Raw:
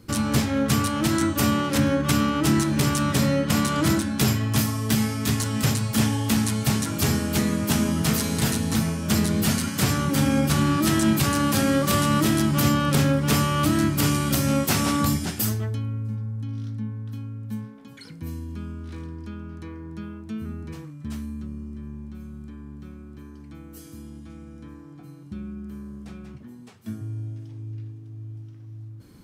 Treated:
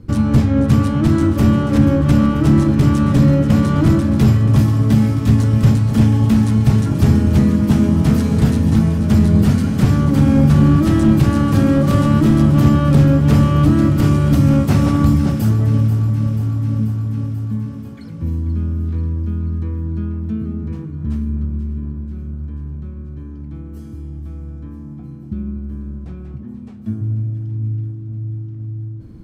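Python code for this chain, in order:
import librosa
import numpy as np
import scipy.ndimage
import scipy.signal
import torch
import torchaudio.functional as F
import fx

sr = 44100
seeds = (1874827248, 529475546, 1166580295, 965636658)

y = fx.echo_alternate(x, sr, ms=243, hz=1300.0, feedback_pct=83, wet_db=-10.0)
y = np.clip(10.0 ** (14.0 / 20.0) * y, -1.0, 1.0) / 10.0 ** (14.0 / 20.0)
y = fx.tilt_eq(y, sr, slope=-3.5)
y = y * 10.0 ** (1.0 / 20.0)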